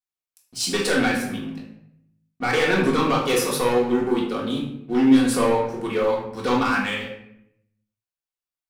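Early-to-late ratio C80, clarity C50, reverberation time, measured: 8.0 dB, 4.5 dB, 0.75 s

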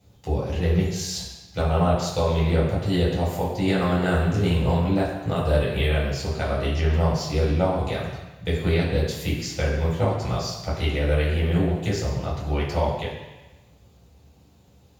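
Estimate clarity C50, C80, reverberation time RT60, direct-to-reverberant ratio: 2.0 dB, 4.0 dB, 1.1 s, −8.0 dB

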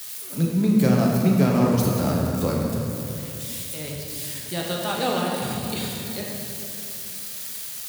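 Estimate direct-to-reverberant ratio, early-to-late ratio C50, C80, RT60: −2.5 dB, 0.0 dB, 1.5 dB, 2.9 s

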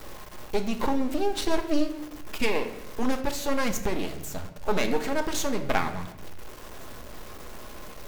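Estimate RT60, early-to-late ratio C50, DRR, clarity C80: 0.90 s, 11.0 dB, 6.0 dB, 13.5 dB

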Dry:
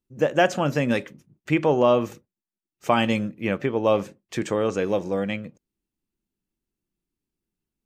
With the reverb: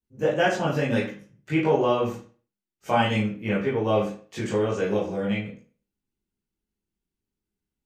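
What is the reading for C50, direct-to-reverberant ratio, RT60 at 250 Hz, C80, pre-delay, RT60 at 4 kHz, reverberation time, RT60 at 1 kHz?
5.5 dB, −9.0 dB, 0.40 s, 11.0 dB, 16 ms, 0.35 s, 0.40 s, 0.40 s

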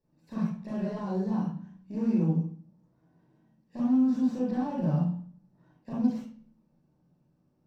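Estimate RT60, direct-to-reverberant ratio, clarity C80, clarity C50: 0.45 s, −7.0 dB, 6.0 dB, −0.5 dB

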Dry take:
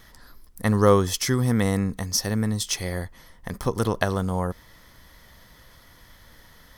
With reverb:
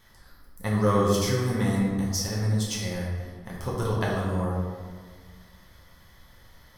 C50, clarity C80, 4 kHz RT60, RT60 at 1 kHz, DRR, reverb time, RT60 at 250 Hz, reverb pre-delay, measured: 0.5 dB, 2.5 dB, 0.95 s, 1.5 s, −5.0 dB, 1.6 s, 2.0 s, 3 ms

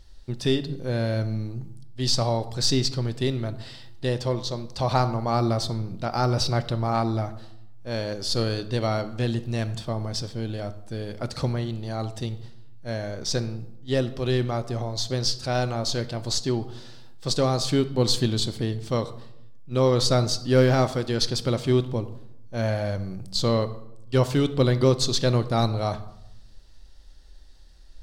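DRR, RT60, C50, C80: 11.0 dB, 0.80 s, 14.5 dB, 17.0 dB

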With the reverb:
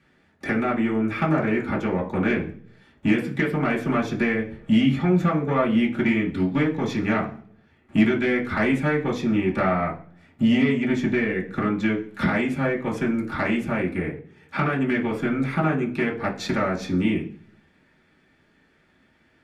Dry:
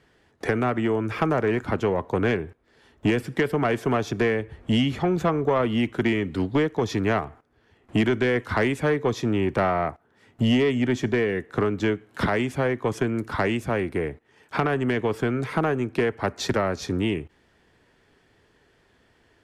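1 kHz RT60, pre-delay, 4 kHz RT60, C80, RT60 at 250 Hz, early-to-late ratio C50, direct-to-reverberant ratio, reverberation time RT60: 0.40 s, 3 ms, 0.55 s, 17.0 dB, 0.75 s, 11.5 dB, −3.5 dB, 0.45 s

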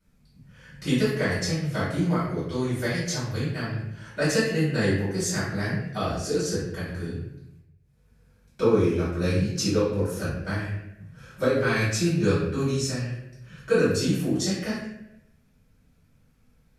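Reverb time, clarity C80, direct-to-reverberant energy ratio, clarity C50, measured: 0.85 s, 4.0 dB, −12.5 dB, 1.0 dB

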